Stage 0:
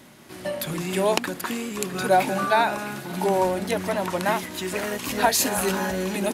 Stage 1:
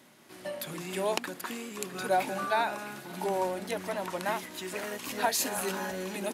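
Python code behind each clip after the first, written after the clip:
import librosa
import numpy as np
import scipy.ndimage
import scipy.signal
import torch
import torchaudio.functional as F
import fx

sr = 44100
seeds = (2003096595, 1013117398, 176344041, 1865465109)

y = fx.highpass(x, sr, hz=230.0, slope=6)
y = F.gain(torch.from_numpy(y), -7.5).numpy()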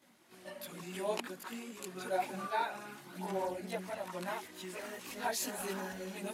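y = fx.chorus_voices(x, sr, voices=4, hz=1.1, base_ms=19, depth_ms=3.0, mix_pct=65)
y = F.gain(torch.from_numpy(y), -5.0).numpy()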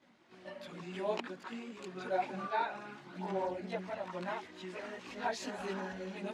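y = fx.air_absorb(x, sr, metres=140.0)
y = F.gain(torch.from_numpy(y), 1.0).numpy()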